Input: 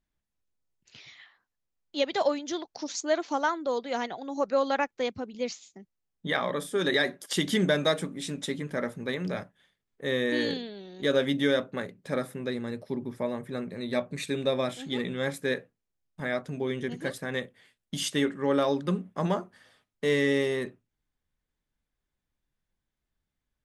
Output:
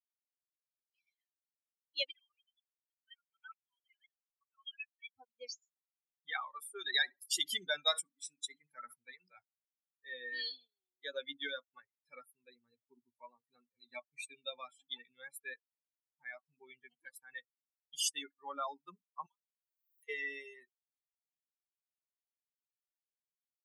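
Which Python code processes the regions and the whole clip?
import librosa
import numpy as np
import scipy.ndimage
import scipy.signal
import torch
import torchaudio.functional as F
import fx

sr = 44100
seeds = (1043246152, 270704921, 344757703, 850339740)

y = fx.chain(x, sr, fx.sine_speech(),
    fx.cheby2_highpass(hz=290.0, order=4, stop_db=80), at=(2.13, 5.11))
y = fx.chain(y, sr, fx.room_flutter(wall_m=11.5, rt60_s=0.25),
    fx.sustainer(db_per_s=100.0), at=(6.78, 9.03))
y = fx.chain(y, sr, fx.differentiator(),
    fx.band_squash(depth_pct=100), at=(19.26, 20.09))
y = fx.bin_expand(y, sr, power=3.0)
y = scipy.signal.sosfilt(scipy.signal.butter(2, 1400.0, 'highpass', fs=sr, output='sos'), y)
y = fx.dynamic_eq(y, sr, hz=2000.0, q=2.2, threshold_db=-54.0, ratio=4.0, max_db=-7)
y = F.gain(torch.from_numpy(y), 4.5).numpy()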